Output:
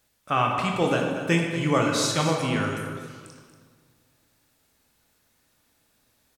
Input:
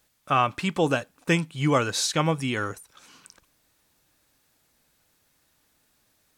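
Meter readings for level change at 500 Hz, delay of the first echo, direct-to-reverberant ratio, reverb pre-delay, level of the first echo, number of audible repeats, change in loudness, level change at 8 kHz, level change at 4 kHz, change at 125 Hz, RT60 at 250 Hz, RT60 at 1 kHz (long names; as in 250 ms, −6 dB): +1.5 dB, 236 ms, 0.5 dB, 16 ms, −11.0 dB, 1, +0.5 dB, 0.0 dB, +0.5 dB, +0.5 dB, 1.9 s, 1.6 s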